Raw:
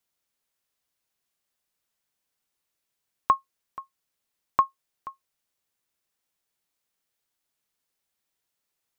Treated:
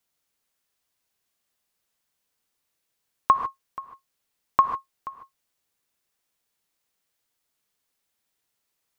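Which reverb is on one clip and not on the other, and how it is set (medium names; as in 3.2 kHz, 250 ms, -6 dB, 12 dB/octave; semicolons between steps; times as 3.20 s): gated-style reverb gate 170 ms rising, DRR 7 dB; trim +2.5 dB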